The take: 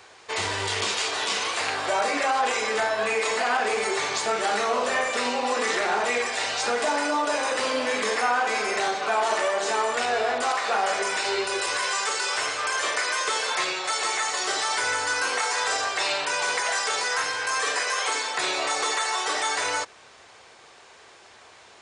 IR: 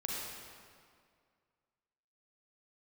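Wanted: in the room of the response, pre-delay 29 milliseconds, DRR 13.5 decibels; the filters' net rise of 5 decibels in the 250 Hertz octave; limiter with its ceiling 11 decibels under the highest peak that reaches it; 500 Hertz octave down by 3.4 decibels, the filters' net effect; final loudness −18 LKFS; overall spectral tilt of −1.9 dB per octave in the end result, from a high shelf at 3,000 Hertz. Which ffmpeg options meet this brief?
-filter_complex "[0:a]equalizer=frequency=250:width_type=o:gain=8,equalizer=frequency=500:width_type=o:gain=-6,highshelf=frequency=3000:gain=-7.5,alimiter=level_in=1dB:limit=-24dB:level=0:latency=1,volume=-1dB,asplit=2[link_01][link_02];[1:a]atrim=start_sample=2205,adelay=29[link_03];[link_02][link_03]afir=irnorm=-1:irlink=0,volume=-16.5dB[link_04];[link_01][link_04]amix=inputs=2:normalize=0,volume=14.5dB"

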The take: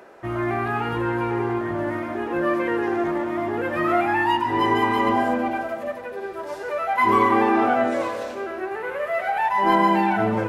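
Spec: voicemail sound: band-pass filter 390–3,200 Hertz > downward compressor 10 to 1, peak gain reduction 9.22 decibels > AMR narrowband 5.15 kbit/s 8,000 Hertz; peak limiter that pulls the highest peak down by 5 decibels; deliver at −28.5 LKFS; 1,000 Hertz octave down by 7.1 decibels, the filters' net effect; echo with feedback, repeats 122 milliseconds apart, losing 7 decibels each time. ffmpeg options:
ffmpeg -i in.wav -af "equalizer=frequency=1000:width_type=o:gain=-8.5,alimiter=limit=-15.5dB:level=0:latency=1,highpass=390,lowpass=3200,aecho=1:1:122|244|366|488|610:0.447|0.201|0.0905|0.0407|0.0183,acompressor=threshold=-30dB:ratio=10,volume=8dB" -ar 8000 -c:a libopencore_amrnb -b:a 5150 out.amr

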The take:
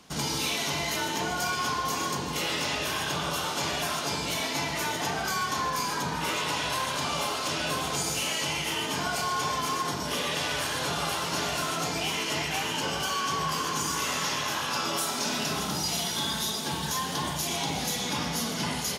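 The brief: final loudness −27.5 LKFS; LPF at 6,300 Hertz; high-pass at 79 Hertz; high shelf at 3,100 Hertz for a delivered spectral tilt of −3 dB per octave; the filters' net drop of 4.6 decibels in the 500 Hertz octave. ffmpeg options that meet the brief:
ffmpeg -i in.wav -af "highpass=79,lowpass=6300,equalizer=frequency=500:width_type=o:gain=-6,highshelf=frequency=3100:gain=-5,volume=4dB" out.wav

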